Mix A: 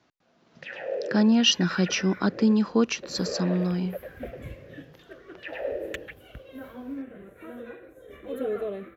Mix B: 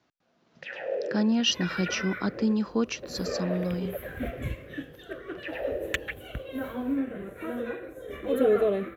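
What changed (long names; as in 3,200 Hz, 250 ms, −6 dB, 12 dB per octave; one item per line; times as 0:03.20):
speech −4.5 dB
second sound +7.5 dB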